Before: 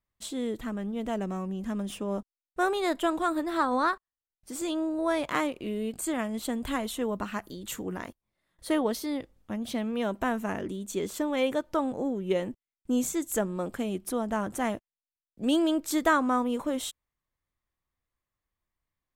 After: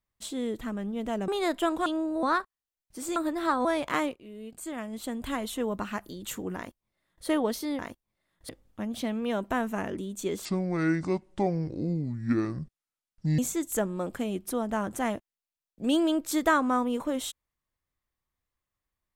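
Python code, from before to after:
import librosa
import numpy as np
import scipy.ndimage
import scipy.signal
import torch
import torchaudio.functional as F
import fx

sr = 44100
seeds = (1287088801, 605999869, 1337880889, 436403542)

y = fx.edit(x, sr, fx.cut(start_s=1.28, length_s=1.41),
    fx.swap(start_s=3.27, length_s=0.49, other_s=4.69, other_length_s=0.37),
    fx.fade_in_from(start_s=5.56, length_s=1.46, floor_db=-16.5),
    fx.duplicate(start_s=7.97, length_s=0.7, to_s=9.2),
    fx.speed_span(start_s=11.16, length_s=1.82, speed=0.62), tone=tone)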